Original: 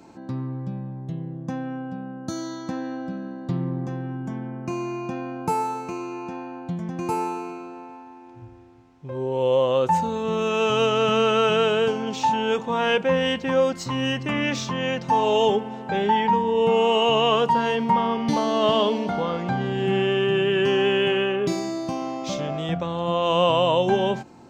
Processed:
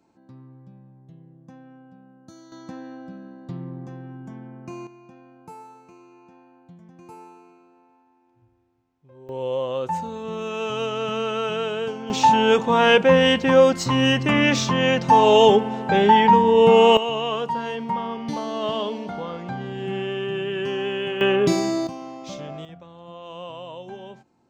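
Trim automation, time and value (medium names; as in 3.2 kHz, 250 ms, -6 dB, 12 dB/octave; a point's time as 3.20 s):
-16 dB
from 2.52 s -7.5 dB
from 4.87 s -18 dB
from 9.29 s -6 dB
from 12.10 s +6 dB
from 16.97 s -6 dB
from 21.21 s +5 dB
from 21.87 s -7 dB
from 22.65 s -17.5 dB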